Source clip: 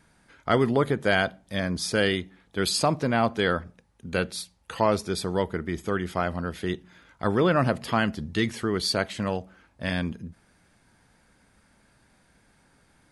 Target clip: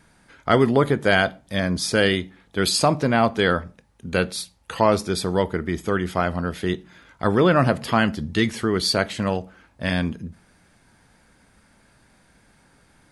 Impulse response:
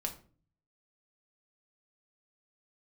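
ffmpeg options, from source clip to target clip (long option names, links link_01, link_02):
-filter_complex "[0:a]asplit=2[link_01][link_02];[1:a]atrim=start_sample=2205,afade=type=out:start_time=0.18:duration=0.01,atrim=end_sample=8379,adelay=22[link_03];[link_02][link_03]afir=irnorm=-1:irlink=0,volume=-18.5dB[link_04];[link_01][link_04]amix=inputs=2:normalize=0,volume=4.5dB"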